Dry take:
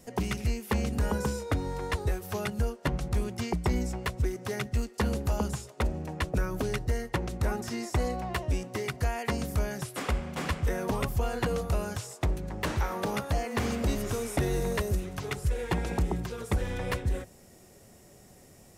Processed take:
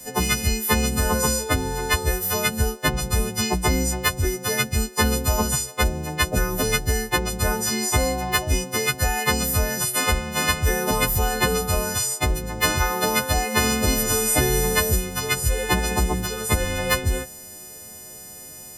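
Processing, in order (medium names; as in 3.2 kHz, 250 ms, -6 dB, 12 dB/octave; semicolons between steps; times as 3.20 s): partials quantised in pitch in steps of 3 st; trim +7.5 dB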